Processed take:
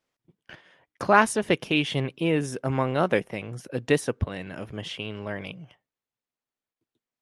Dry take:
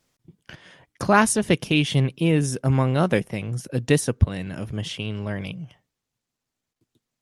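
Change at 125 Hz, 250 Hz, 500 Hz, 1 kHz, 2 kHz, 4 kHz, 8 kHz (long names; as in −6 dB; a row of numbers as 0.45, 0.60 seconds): −9.0, −5.0, −1.0, 0.0, −0.5, −3.0, −8.5 decibels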